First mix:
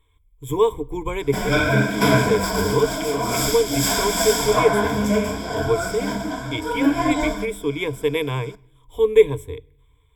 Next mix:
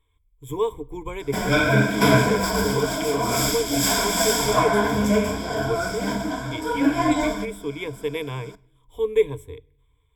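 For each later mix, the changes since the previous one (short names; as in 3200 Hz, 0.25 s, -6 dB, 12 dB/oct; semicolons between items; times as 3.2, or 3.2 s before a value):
speech -6.0 dB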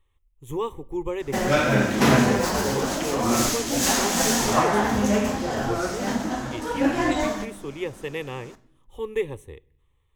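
background: send +9.0 dB; master: remove ripple EQ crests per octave 1.7, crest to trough 16 dB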